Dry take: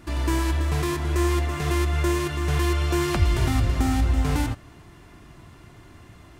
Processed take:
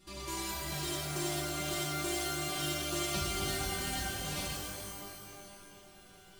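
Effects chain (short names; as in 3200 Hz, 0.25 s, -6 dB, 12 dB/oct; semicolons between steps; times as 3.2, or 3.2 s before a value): resonant high shelf 2600 Hz +7.5 dB, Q 1.5; metallic resonator 190 Hz, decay 0.21 s, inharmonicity 0.002; shimmer reverb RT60 2.1 s, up +12 st, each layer -2 dB, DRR 0.5 dB; gain -2.5 dB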